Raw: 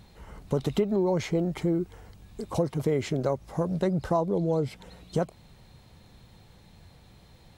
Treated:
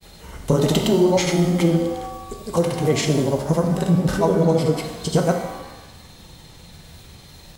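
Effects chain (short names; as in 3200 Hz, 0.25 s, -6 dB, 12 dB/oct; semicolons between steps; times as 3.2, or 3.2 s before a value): grains, pitch spread up and down by 0 st; high shelf 3300 Hz +10.5 dB; shimmer reverb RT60 1 s, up +7 st, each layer -8 dB, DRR 4 dB; gain +8.5 dB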